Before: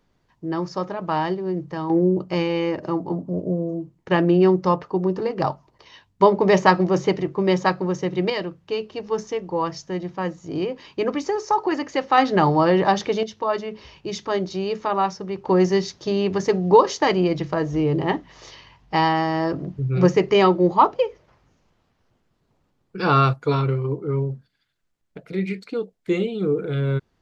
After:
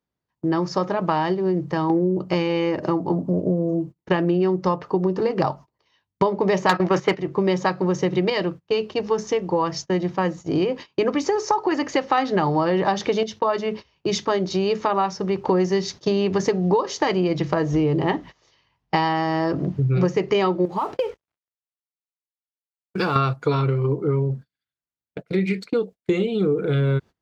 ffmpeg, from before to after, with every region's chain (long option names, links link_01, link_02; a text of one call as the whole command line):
ffmpeg -i in.wav -filter_complex "[0:a]asettb=1/sr,asplit=3[link_01][link_02][link_03];[link_01]atrim=end=6.694[link_04];[link_02]atrim=start=6.69:end=7.19,asetpts=PTS-STARTPTS,afade=type=in:duration=0.004:curve=qsin,afade=type=out:start_time=0.496:duration=0.004:curve=qsin,agate=range=-12dB:threshold=-24dB:ratio=16:release=100:detection=peak,equalizer=frequency=1700:width_type=o:width=2.4:gain=11.5,acontrast=67[link_05];[link_03]atrim=start=7.186[link_06];[link_04][link_05]acrossfade=duration=0.004:curve1=hsin:curve2=qsin[link_07];[link_07][link_06]acrossfade=duration=0.004:curve1=qsin:curve2=hsin,asettb=1/sr,asplit=3[link_08][link_09][link_10];[link_08]atrim=end=20.654[link_11];[link_09]atrim=start=20.65:end=23.16,asetpts=PTS-STARTPTS,afade=type=in:duration=0.004:curve=qsin,afade=type=out:start_time=2.506:duration=0.004:curve=qsin,acompressor=threshold=-23dB:ratio=20:attack=3.2:release=140:knee=1:detection=peak,aeval=exprs='sgn(val(0))*max(abs(val(0))-0.00224,0)':channel_layout=same[link_12];[link_10]atrim=start=23.156[link_13];[link_11][link_12]acrossfade=duration=0.004:curve1=hsin:curve2=qsin[link_14];[link_14][link_13]acrossfade=duration=0.004:curve1=qsin:curve2=hsin,agate=range=-25dB:threshold=-38dB:ratio=16:detection=peak,highpass=54,acompressor=threshold=-25dB:ratio=6,volume=7.5dB" out.wav